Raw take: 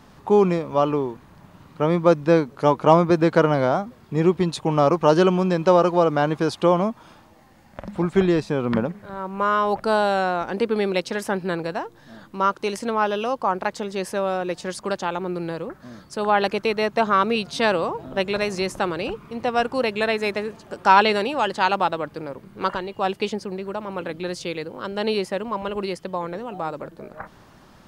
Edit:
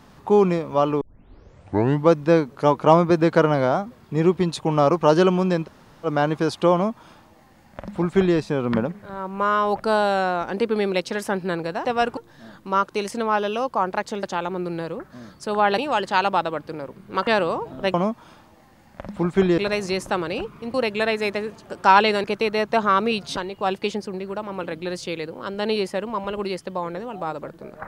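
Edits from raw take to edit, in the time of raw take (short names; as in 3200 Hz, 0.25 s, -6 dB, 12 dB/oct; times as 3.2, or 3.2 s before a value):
1.01 tape start 1.11 s
5.65–6.06 room tone, crossfade 0.06 s
6.73–8.37 copy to 18.27
13.91–14.93 cut
16.48–17.6 swap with 21.25–22.74
19.43–19.75 move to 11.85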